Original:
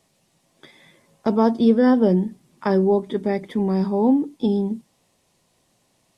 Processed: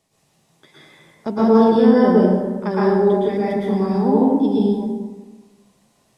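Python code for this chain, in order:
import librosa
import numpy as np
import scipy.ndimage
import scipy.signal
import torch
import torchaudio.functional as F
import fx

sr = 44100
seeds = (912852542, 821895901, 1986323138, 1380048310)

y = fx.rev_plate(x, sr, seeds[0], rt60_s=1.3, hf_ratio=0.55, predelay_ms=100, drr_db=-8.0)
y = y * librosa.db_to_amplitude(-4.5)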